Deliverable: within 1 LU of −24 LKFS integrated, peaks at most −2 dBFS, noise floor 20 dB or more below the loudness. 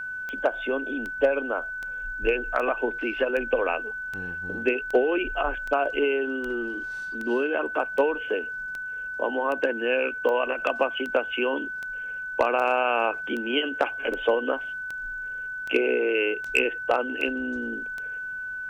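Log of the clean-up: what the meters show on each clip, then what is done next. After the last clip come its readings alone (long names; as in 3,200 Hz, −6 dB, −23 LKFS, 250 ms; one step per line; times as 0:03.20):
number of clicks 24; interfering tone 1,500 Hz; level of the tone −31 dBFS; integrated loudness −26.5 LKFS; sample peak −10.5 dBFS; target loudness −24.0 LKFS
→ click removal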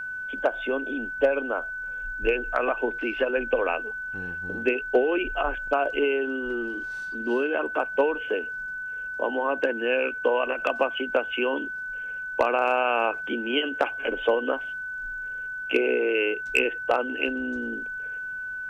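number of clicks 0; interfering tone 1,500 Hz; level of the tone −31 dBFS
→ notch filter 1,500 Hz, Q 30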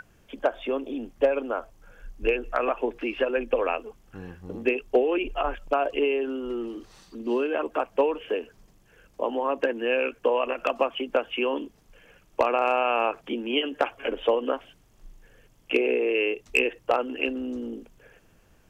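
interfering tone none found; integrated loudness −27.0 LKFS; sample peak −10.5 dBFS; target loudness −24.0 LKFS
→ level +3 dB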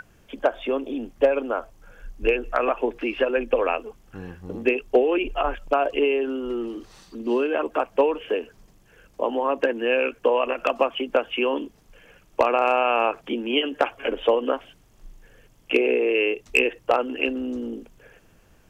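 integrated loudness −24.0 LKFS; sample peak −7.5 dBFS; background noise floor −57 dBFS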